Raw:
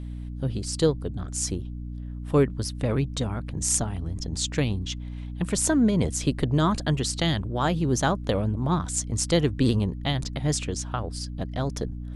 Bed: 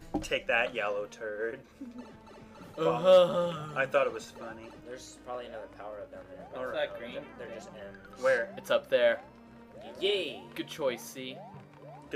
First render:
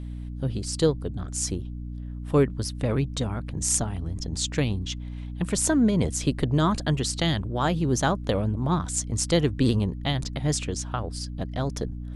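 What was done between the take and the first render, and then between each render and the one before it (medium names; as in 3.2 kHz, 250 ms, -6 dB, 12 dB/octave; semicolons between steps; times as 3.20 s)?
no audible change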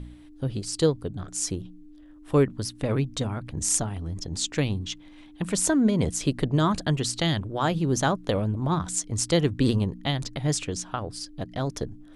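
de-hum 60 Hz, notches 4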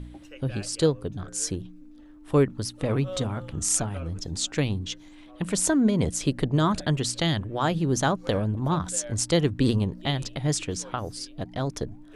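add bed -16 dB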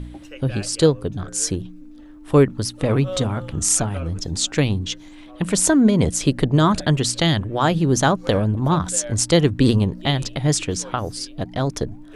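trim +6.5 dB; peak limiter -1 dBFS, peak gain reduction 2.5 dB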